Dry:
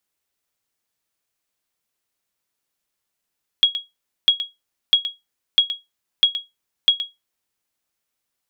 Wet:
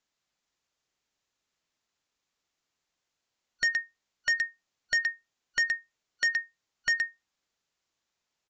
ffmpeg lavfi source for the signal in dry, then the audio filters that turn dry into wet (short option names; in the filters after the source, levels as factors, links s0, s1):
-f lavfi -i "aevalsrc='0.531*(sin(2*PI*3310*mod(t,0.65))*exp(-6.91*mod(t,0.65)/0.19)+0.251*sin(2*PI*3310*max(mod(t,0.65)-0.12,0))*exp(-6.91*max(mod(t,0.65)-0.12,0)/0.19))':d=3.9:s=44100"
-af "afftfilt=real='real(if(lt(b,272),68*(eq(floor(b/68),0)*3+eq(floor(b/68),1)*2+eq(floor(b/68),2)*1+eq(floor(b/68),3)*0)+mod(b,68),b),0)':imag='imag(if(lt(b,272),68*(eq(floor(b/68),0)*3+eq(floor(b/68),1)*2+eq(floor(b/68),2)*1+eq(floor(b/68),3)*0)+mod(b,68),b),0)':win_size=2048:overlap=0.75,aresample=16000,asoftclip=type=hard:threshold=0.075,aresample=44100"